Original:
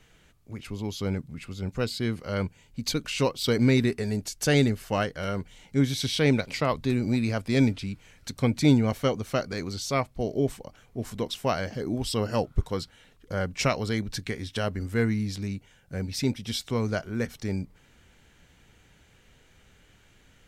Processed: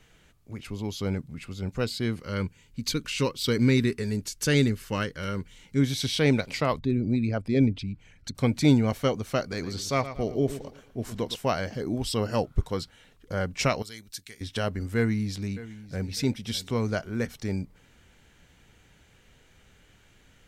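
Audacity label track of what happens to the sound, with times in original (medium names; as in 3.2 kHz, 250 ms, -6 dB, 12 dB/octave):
2.200000	5.830000	peaking EQ 700 Hz -14.5 dB 0.42 oct
6.790000	8.350000	resonances exaggerated exponent 1.5
9.420000	11.360000	bucket-brigade echo 114 ms, stages 4096, feedback 36%, level -12.5 dB
13.820000	14.410000	pre-emphasis filter coefficient 0.9
14.960000	16.120000	echo throw 600 ms, feedback 30%, level -16.5 dB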